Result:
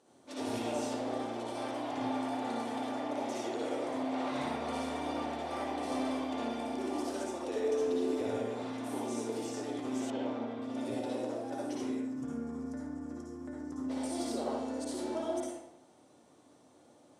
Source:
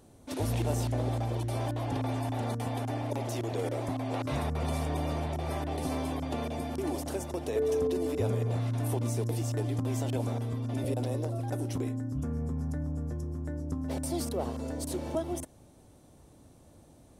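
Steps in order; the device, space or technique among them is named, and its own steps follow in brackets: supermarket ceiling speaker (band-pass 330–6600 Hz; reverberation RT60 0.85 s, pre-delay 52 ms, DRR -5 dB); peaking EQ 8.4 kHz +3.5 dB 0.75 oct; 10.10–10.62 s: low-pass 3.4 kHz 12 dB/octave; trim -6 dB

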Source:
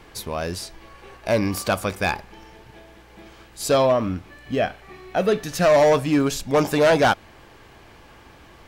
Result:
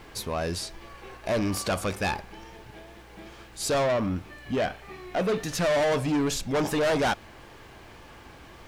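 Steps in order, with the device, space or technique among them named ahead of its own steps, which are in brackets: compact cassette (saturation -21.5 dBFS, distortion -8 dB; low-pass 12 kHz 12 dB/octave; wow and flutter; white noise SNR 40 dB)

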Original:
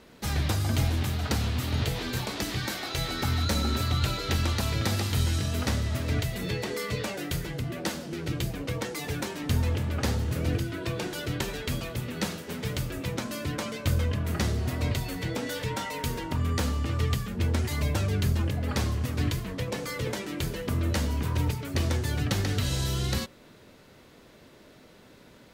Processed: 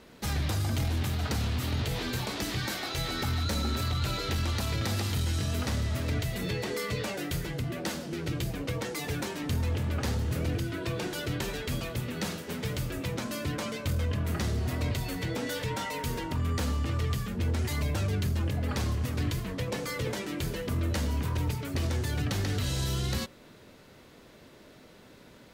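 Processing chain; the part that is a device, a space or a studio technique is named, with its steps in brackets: soft clipper into limiter (saturation -18.5 dBFS, distortion -21 dB; peak limiter -22.5 dBFS, peak gain reduction 3.5 dB)

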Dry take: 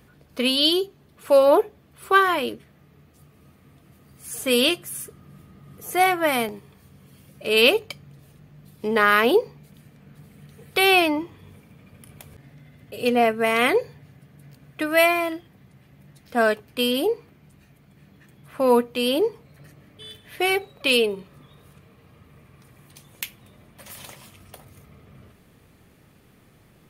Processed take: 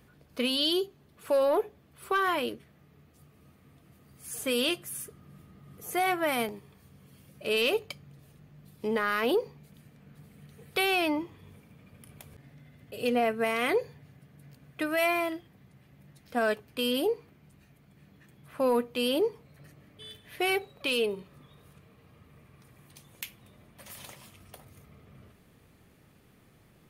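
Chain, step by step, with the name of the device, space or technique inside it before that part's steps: soft clipper into limiter (saturation -6 dBFS, distortion -24 dB; peak limiter -13.5 dBFS, peak gain reduction 6 dB); trim -5 dB

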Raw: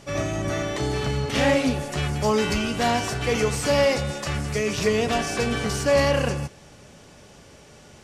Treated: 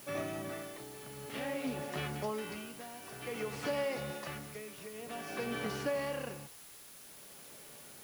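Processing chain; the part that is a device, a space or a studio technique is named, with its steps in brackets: medium wave at night (band-pass 180–3500 Hz; compression, threshold -23 dBFS, peak gain reduction 8 dB; tremolo 0.52 Hz, depth 79%; whistle 10 kHz -50 dBFS; white noise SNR 14 dB); trim -8 dB

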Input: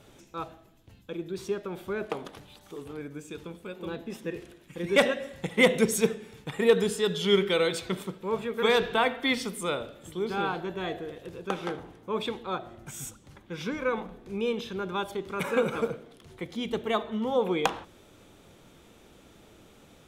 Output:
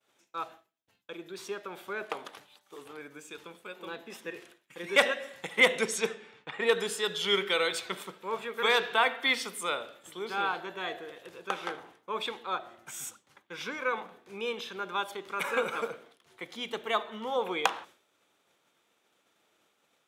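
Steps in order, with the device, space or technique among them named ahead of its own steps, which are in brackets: expander -45 dBFS; 5.60–6.87 s: level-controlled noise filter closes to 2.7 kHz, open at -16 dBFS; high-pass 76 Hz; filter by subtraction (in parallel: low-pass 1.3 kHz 12 dB/octave + polarity flip)

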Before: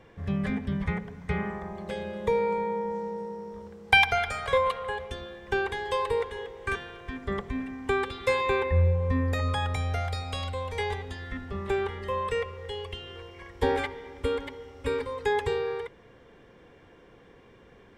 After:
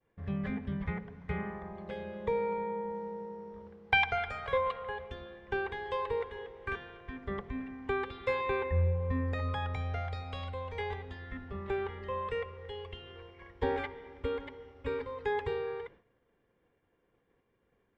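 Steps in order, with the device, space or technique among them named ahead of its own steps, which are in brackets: hearing-loss simulation (low-pass 3.1 kHz 12 dB/octave; expander -44 dBFS); trim -6 dB

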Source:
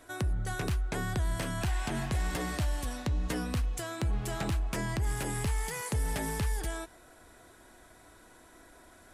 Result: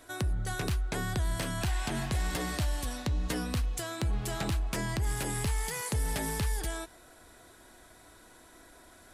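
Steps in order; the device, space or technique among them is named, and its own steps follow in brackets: presence and air boost (peaking EQ 4.1 kHz +3.5 dB 0.89 oct; treble shelf 9.1 kHz +4.5 dB)

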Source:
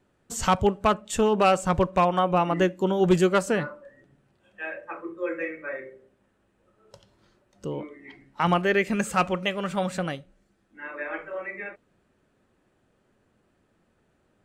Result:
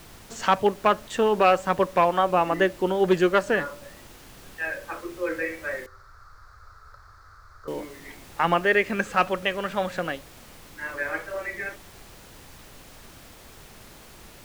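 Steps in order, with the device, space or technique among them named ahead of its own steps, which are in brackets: horn gramophone (band-pass 260–4500 Hz; peaking EQ 1.7 kHz +6.5 dB 0.2 oct; wow and flutter; pink noise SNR 20 dB); 5.86–7.68 s: FFT filter 100 Hz 0 dB, 210 Hz -29 dB, 420 Hz -15 dB, 900 Hz -10 dB, 1.3 kHz +10 dB, 2.9 kHz -29 dB, 4.4 kHz -8 dB, 9.1 kHz -21 dB; trim +1.5 dB

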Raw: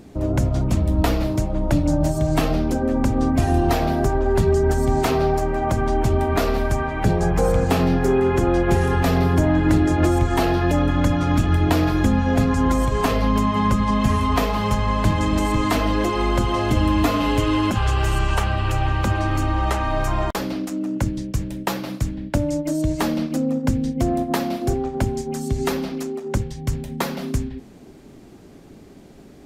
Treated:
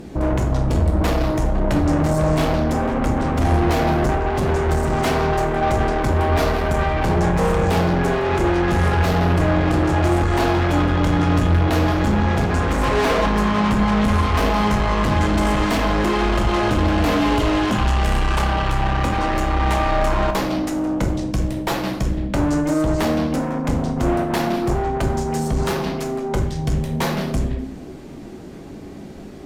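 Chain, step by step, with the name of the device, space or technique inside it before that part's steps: 12.83–13.26 s: high-order bell 620 Hz +9 dB 2.7 oct; tube preamp driven hard (valve stage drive 26 dB, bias 0.45; treble shelf 6.7 kHz -5.5 dB); plate-style reverb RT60 0.67 s, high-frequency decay 0.65×, DRR 3.5 dB; trim +8.5 dB

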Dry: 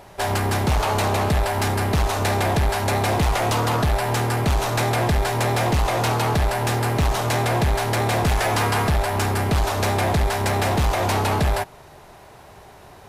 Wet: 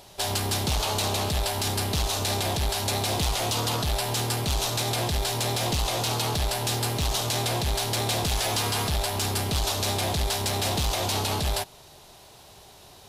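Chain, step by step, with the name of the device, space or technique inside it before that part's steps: over-bright horn tweeter (resonant high shelf 2.6 kHz +9.5 dB, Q 1.5; peak limiter -9 dBFS, peak gain reduction 5 dB); trim -6.5 dB

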